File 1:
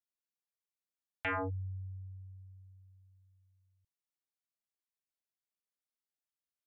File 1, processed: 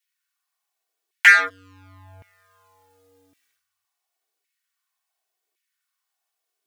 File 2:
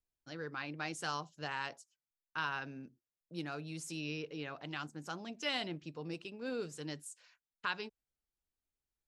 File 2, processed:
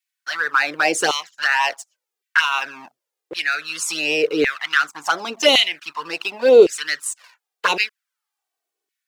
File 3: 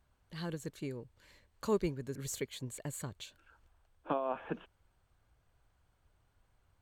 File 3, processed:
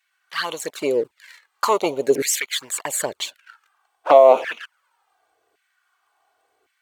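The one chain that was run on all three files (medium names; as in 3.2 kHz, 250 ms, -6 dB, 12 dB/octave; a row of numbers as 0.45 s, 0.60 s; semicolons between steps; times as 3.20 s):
waveshaping leveller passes 2; touch-sensitive flanger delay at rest 2.7 ms, full sweep at -28.5 dBFS; LFO high-pass saw down 0.9 Hz 390–2200 Hz; peak normalisation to -1.5 dBFS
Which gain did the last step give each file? +20.0 dB, +17.5 dB, +15.5 dB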